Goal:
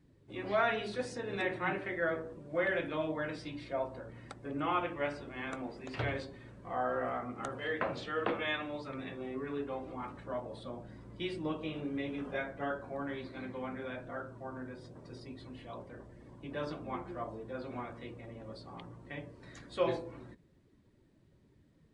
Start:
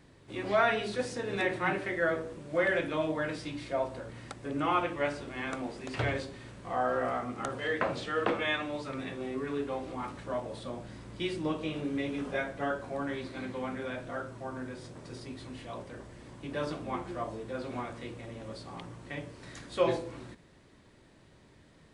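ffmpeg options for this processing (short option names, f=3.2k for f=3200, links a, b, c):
-af "afftdn=nr=12:nf=-53,volume=-4dB"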